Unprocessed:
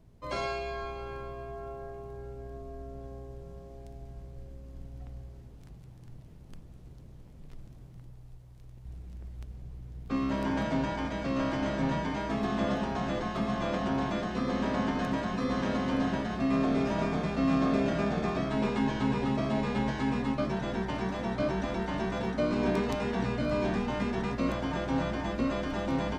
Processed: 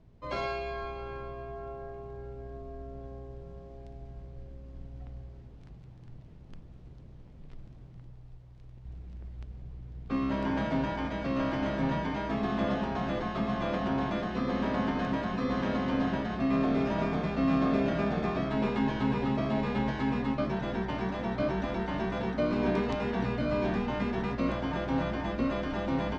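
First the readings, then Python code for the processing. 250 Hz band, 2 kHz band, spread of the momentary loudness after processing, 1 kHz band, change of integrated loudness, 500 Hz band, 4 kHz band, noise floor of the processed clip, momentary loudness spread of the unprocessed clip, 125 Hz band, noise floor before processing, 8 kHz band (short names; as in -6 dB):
0.0 dB, 0.0 dB, 17 LU, 0.0 dB, 0.0 dB, 0.0 dB, -1.5 dB, -50 dBFS, 17 LU, 0.0 dB, -50 dBFS, n/a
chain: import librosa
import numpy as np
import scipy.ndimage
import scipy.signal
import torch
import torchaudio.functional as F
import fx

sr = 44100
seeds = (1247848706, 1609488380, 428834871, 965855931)

y = scipy.signal.sosfilt(scipy.signal.butter(2, 4400.0, 'lowpass', fs=sr, output='sos'), x)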